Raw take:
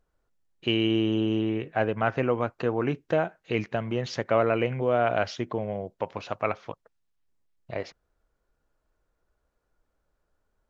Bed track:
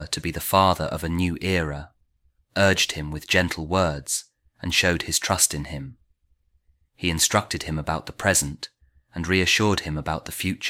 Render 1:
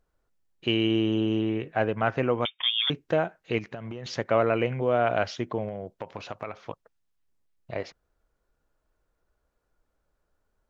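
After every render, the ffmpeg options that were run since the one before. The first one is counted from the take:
-filter_complex "[0:a]asettb=1/sr,asplit=3[s0][s1][s2];[s0]atrim=end=2.454[s3];[s1]atrim=start=2.45:end=2.9,asetpts=PTS-STARTPTS,afade=t=in:d=0.004:c=qsin,afade=t=out:st=0.446:d=0.004:c=qsin,lowpass=f=3100:t=q:w=0.5098,lowpass=f=3100:t=q:w=0.6013,lowpass=f=3100:t=q:w=0.9,lowpass=f=3100:t=q:w=2.563,afreqshift=-3700[s4];[s2]atrim=start=2.896[s5];[s3][s4]acrossfade=d=0.004:c1=hsin:c2=qsin[s6];[s6][s5]acrossfade=d=0.004:c1=qsin:c2=hsin,asettb=1/sr,asplit=3[s7][s8][s9];[s7]atrim=end=3.584[s10];[s8]atrim=start=3.58:end=4.06,asetpts=PTS-STARTPTS,afade=t=in:d=0.004:c=qsin,afade=t=out:st=0.476:d=0.004:c=qsin,acompressor=threshold=0.0251:ratio=12:attack=3.2:release=140:knee=1:detection=peak[s11];[s9]atrim=start=4.056[s12];[s10][s11]acrossfade=d=0.004:c1=hsin:c2=qsin[s13];[s13][s12]acrossfade=d=0.004:c1=qsin:c2=hsin,asettb=1/sr,asplit=3[s14][s15][s16];[s14]atrim=end=5.684[s17];[s15]atrim=start=5.68:end=6.68,asetpts=PTS-STARTPTS,afade=t=in:d=0.004:c=qsin,afade=t=out:st=0.996:d=0.004:c=qsin,acompressor=threshold=0.0316:ratio=6:attack=3.2:release=140:knee=1:detection=peak[s18];[s16]atrim=start=6.676[s19];[s17][s18]acrossfade=d=0.004:c1=hsin:c2=qsin[s20];[s20][s19]acrossfade=d=0.004:c1=qsin:c2=hsin"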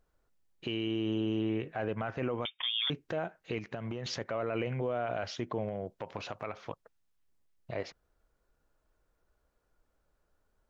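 -af "acompressor=threshold=0.02:ratio=1.5,alimiter=limit=0.0668:level=0:latency=1:release=15"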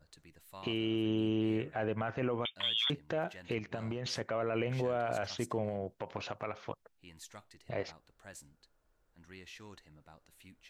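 -filter_complex "[1:a]volume=0.0266[s0];[0:a][s0]amix=inputs=2:normalize=0"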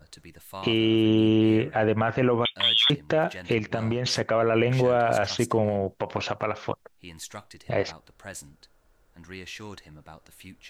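-af "volume=3.76"

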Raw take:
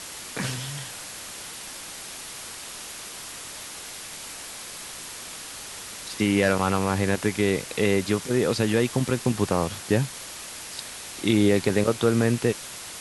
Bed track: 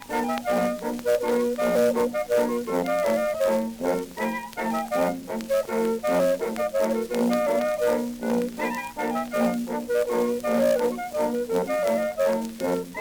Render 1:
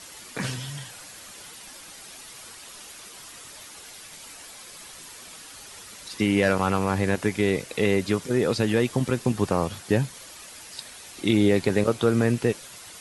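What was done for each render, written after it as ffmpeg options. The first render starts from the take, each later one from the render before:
-af "afftdn=nr=8:nf=-39"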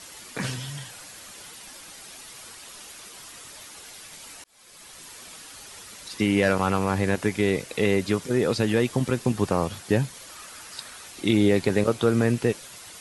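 -filter_complex "[0:a]asettb=1/sr,asplit=3[s0][s1][s2];[s0]atrim=end=10.294[s3];[s1]atrim=start=10.29:end=11.08,asetpts=PTS-STARTPTS,afade=t=in:d=0.004:c=qsin,afade=t=out:st=0.786:d=0.004:c=qsin,equalizer=f=1300:t=o:w=0.59:g=8[s4];[s2]atrim=start=11.076[s5];[s3][s4]acrossfade=d=0.004:c1=hsin:c2=qsin[s6];[s6][s5]acrossfade=d=0.004:c1=qsin:c2=hsin,asplit=2[s7][s8];[s7]atrim=end=4.44,asetpts=PTS-STARTPTS,afade=t=out:st=4.436:d=0.004:c=hsin[s9];[s8]atrim=start=4.44,asetpts=PTS-STARTPTS,afade=t=in:d=0.84:c=qsin[s10];[s9][s10]concat=n=2:v=0:a=1"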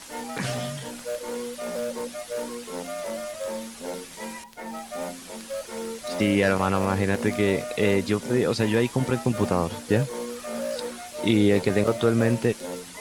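-filter_complex "[1:a]volume=0.335[s0];[0:a][s0]amix=inputs=2:normalize=0"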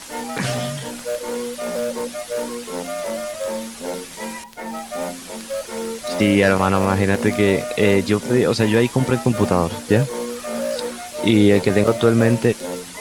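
-af "volume=2,alimiter=limit=0.794:level=0:latency=1"

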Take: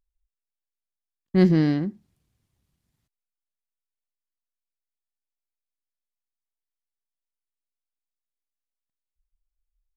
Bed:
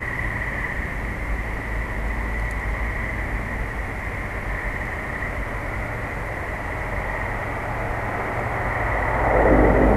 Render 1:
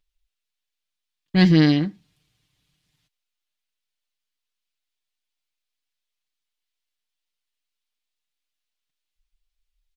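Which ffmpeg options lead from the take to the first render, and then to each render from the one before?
-af "equalizer=f=3300:t=o:w=1.9:g=13,aecho=1:1:6.6:0.69"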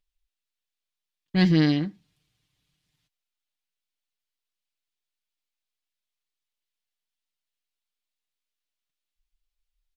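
-af "volume=0.596"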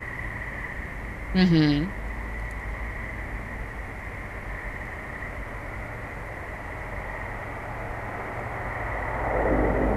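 -filter_complex "[1:a]volume=0.422[s0];[0:a][s0]amix=inputs=2:normalize=0"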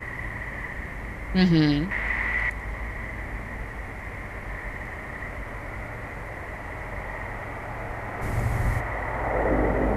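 -filter_complex "[0:a]asettb=1/sr,asplit=3[s0][s1][s2];[s0]atrim=end=1.914[s3];[s1]atrim=start=1.91:end=2.5,asetpts=PTS-STARTPTS,afade=t=in:d=0.004:c=qsin,afade=t=out:st=0.586:d=0.004:c=qsin,equalizer=f=2200:t=o:w=1.8:g=14[s4];[s2]atrim=start=2.496[s5];[s3][s4]acrossfade=d=0.004:c1=hsin:c2=qsin[s6];[s6][s5]acrossfade=d=0.004:c1=qsin:c2=hsin,asplit=3[s7][s8][s9];[s7]afade=t=out:st=8.21:d=0.02[s10];[s8]bass=f=250:g=12,treble=f=4000:g=13,afade=t=in:st=8.21:d=0.02,afade=t=out:st=8.79:d=0.02[s11];[s9]afade=t=in:st=8.79:d=0.02[s12];[s10][s11][s12]amix=inputs=3:normalize=0"

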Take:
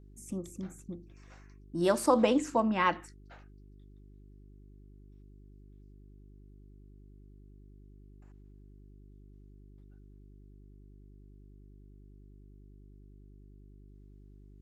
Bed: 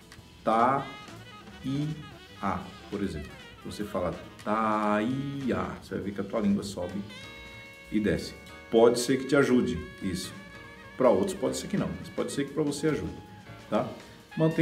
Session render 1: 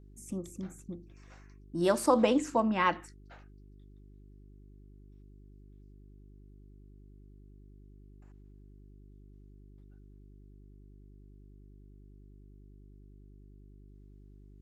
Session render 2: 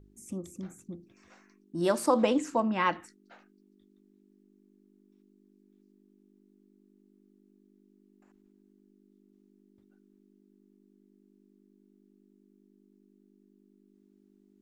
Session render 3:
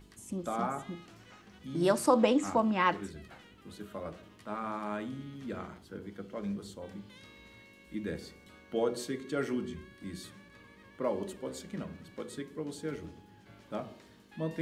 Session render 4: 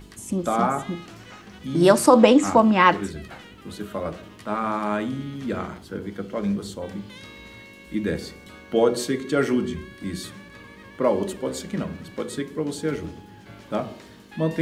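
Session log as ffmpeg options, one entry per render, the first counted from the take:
-af anull
-af "bandreject=f=50:t=h:w=4,bandreject=f=100:t=h:w=4,bandreject=f=150:t=h:w=4"
-filter_complex "[1:a]volume=0.299[s0];[0:a][s0]amix=inputs=2:normalize=0"
-af "volume=3.76,alimiter=limit=0.794:level=0:latency=1"

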